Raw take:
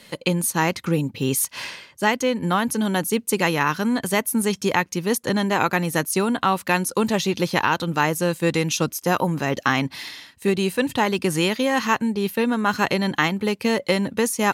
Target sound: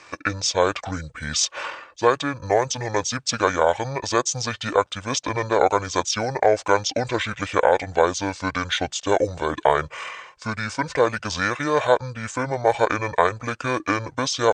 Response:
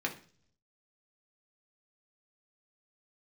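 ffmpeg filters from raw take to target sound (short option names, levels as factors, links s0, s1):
-af "lowshelf=f=550:t=q:w=1.5:g=-11,asetrate=24750,aresample=44100,atempo=1.7818,volume=1.26"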